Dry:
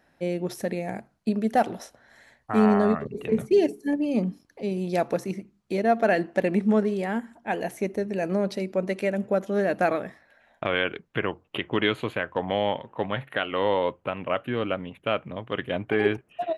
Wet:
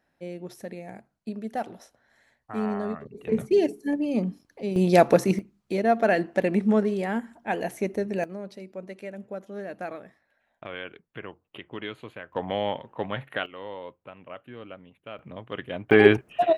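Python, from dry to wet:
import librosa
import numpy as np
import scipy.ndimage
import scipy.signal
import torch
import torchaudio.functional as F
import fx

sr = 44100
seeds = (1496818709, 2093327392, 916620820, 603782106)

y = fx.gain(x, sr, db=fx.steps((0.0, -9.0), (3.27, -1.0), (4.76, 8.0), (5.39, 0.0), (8.24, -12.0), (12.33, -2.5), (13.46, -14.5), (15.19, -5.0), (15.91, 7.5)))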